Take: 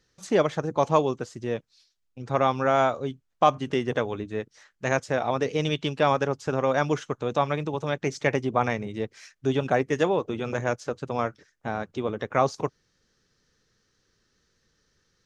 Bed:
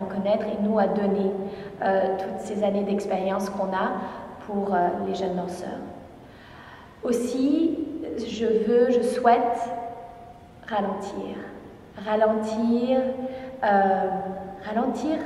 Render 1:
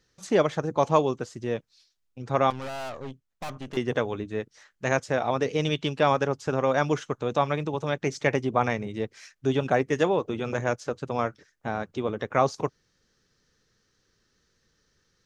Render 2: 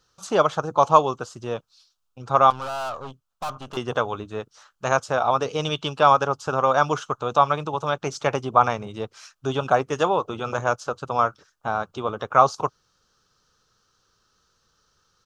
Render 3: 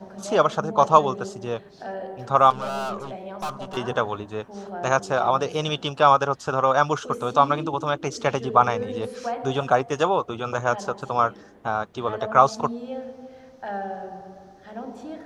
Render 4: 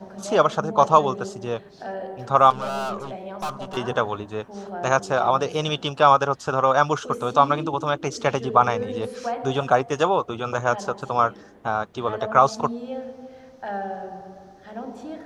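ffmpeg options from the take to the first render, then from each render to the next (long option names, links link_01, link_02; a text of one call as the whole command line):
ffmpeg -i in.wav -filter_complex "[0:a]asettb=1/sr,asplit=3[link_01][link_02][link_03];[link_01]atrim=end=2.504[link_04];[link_02]atrim=start=2.5:end=3.77,asetpts=PTS-STARTPTS,afade=type=in:duration=0.004:curve=qsin,afade=type=out:start_time=1.266:duration=0.004:curve=qsin,aeval=exprs='(tanh(44.7*val(0)+0.75)-tanh(0.75))/44.7':channel_layout=same[link_05];[link_03]atrim=start=3.766[link_06];[link_04][link_05]acrossfade=duration=0.004:curve1=hsin:curve2=qsin[link_07];[link_07][link_06]acrossfade=duration=0.004:curve1=qsin:curve2=hsin" out.wav
ffmpeg -i in.wav -af "firequalizer=gain_entry='entry(110,0);entry(260,-4);entry(730,6);entry(1300,12);entry(1900,-8);entry(2800,4)':delay=0.05:min_phase=1" out.wav
ffmpeg -i in.wav -i bed.wav -filter_complex "[1:a]volume=-11dB[link_01];[0:a][link_01]amix=inputs=2:normalize=0" out.wav
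ffmpeg -i in.wav -af "volume=1dB,alimiter=limit=-3dB:level=0:latency=1" out.wav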